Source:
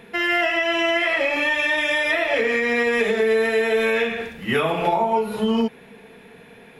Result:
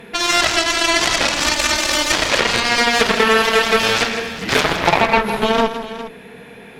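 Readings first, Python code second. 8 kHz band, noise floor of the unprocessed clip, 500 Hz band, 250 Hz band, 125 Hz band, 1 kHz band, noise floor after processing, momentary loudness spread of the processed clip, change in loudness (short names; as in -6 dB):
+21.5 dB, -47 dBFS, +1.0 dB, +2.0 dB, +6.5 dB, +7.0 dB, -39 dBFS, 6 LU, +5.0 dB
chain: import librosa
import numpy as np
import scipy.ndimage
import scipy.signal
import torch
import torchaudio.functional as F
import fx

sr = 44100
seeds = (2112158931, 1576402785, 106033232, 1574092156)

y = fx.cheby_harmonics(x, sr, harmonics=(7,), levels_db=(-10,), full_scale_db=-7.5)
y = fx.echo_multitap(y, sr, ms=(163, 408), db=(-10.5, -14.0))
y = y * librosa.db_to_amplitude(5.0)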